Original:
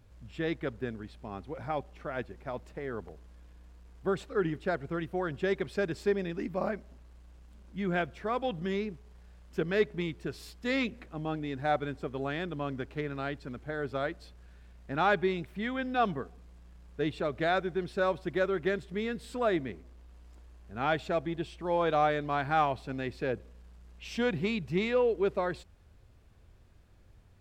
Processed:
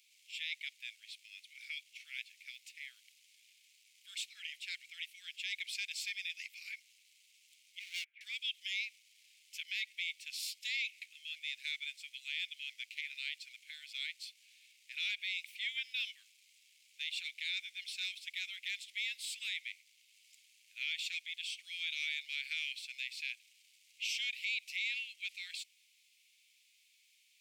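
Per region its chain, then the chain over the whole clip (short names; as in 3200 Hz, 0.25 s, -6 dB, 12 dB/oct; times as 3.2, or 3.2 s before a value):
7.79–8.21 LPF 1600 Hz 24 dB/oct + hard clip -33 dBFS + three-band squash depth 40%
whole clip: Chebyshev high-pass 2200 Hz, order 6; limiter -37 dBFS; gain +9.5 dB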